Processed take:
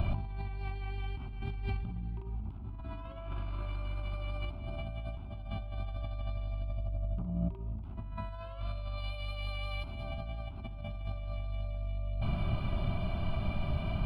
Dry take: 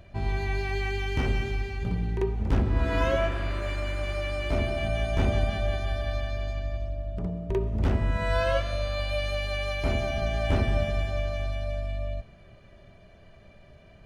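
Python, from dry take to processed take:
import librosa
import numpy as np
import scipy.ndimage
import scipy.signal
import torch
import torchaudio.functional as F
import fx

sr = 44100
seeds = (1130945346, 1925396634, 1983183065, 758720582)

y = fx.high_shelf(x, sr, hz=2300.0, db=fx.steps((0.0, -11.5), (8.97, -3.0), (10.03, -9.0)))
y = fx.over_compress(y, sr, threshold_db=-43.0, ratio=-1.0)
y = fx.fixed_phaser(y, sr, hz=1800.0, stages=6)
y = y * 10.0 ** (7.5 / 20.0)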